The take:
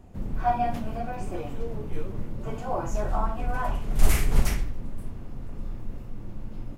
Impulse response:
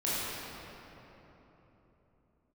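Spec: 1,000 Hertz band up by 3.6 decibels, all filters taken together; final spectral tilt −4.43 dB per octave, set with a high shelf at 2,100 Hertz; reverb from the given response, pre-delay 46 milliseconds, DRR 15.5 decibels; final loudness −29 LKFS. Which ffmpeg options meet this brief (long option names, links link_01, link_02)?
-filter_complex "[0:a]equalizer=frequency=1000:width_type=o:gain=7,highshelf=frequency=2100:gain=-7.5,asplit=2[link_01][link_02];[1:a]atrim=start_sample=2205,adelay=46[link_03];[link_02][link_03]afir=irnorm=-1:irlink=0,volume=-24.5dB[link_04];[link_01][link_04]amix=inputs=2:normalize=0,volume=0.5dB"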